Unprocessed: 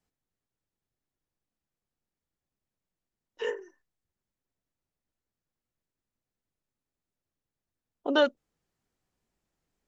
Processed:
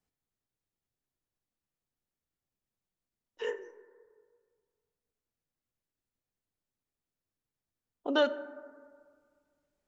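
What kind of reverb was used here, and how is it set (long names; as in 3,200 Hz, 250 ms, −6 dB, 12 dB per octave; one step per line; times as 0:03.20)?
dense smooth reverb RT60 1.9 s, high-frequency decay 0.3×, DRR 13 dB
level −3.5 dB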